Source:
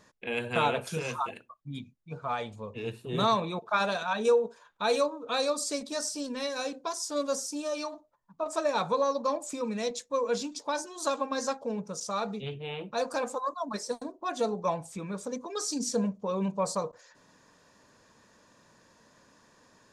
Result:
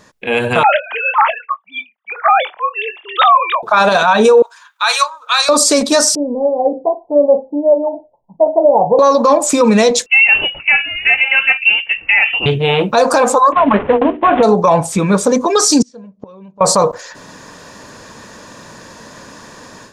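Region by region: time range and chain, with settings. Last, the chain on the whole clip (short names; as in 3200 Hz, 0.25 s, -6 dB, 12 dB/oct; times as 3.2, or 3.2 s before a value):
0.63–3.63 sine-wave speech + HPF 760 Hz 24 dB/oct + doubler 23 ms -12.5 dB
4.42–5.49 HPF 1100 Hz 24 dB/oct + upward expander, over -42 dBFS
6.15–8.99 steep low-pass 840 Hz 72 dB/oct + low shelf 470 Hz -11 dB + doubler 38 ms -13.5 dB
10.06–12.46 HPF 340 Hz 24 dB/oct + inverted band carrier 3200 Hz
13.52–14.43 CVSD 16 kbps + tilt shelf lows +3.5 dB, about 1400 Hz + notches 60/120/180/240/300/360/420/480 Hz
15.82–16.61 flipped gate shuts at -32 dBFS, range -31 dB + air absorption 140 m
whole clip: dynamic EQ 910 Hz, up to +5 dB, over -40 dBFS, Q 0.73; AGC gain up to 11 dB; maximiser +14.5 dB; gain -1 dB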